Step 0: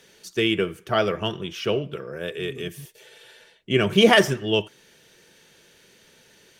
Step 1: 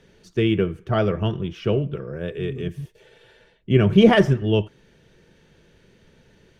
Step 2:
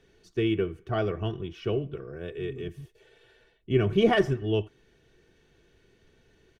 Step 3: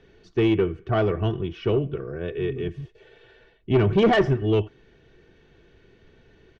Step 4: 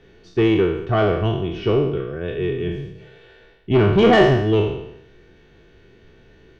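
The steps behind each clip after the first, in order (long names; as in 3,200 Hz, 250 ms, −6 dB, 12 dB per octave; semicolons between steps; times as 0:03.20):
RIAA equalisation playback; level −2 dB
comb filter 2.7 ms, depth 45%; level −7.5 dB
high-frequency loss of the air 160 metres; soft clipping −19.5 dBFS, distortion −13 dB; level +7.5 dB
peak hold with a decay on every bin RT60 0.81 s; level +2.5 dB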